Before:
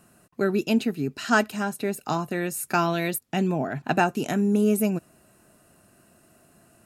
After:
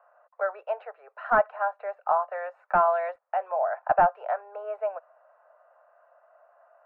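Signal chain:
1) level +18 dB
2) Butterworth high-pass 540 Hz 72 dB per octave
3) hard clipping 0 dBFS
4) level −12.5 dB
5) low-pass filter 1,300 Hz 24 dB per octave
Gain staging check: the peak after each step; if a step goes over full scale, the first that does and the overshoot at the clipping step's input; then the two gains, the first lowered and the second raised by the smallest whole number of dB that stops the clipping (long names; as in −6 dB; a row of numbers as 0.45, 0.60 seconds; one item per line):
+11.0, +9.5, 0.0, −12.5, −10.5 dBFS
step 1, 9.5 dB
step 1 +8 dB, step 4 −2.5 dB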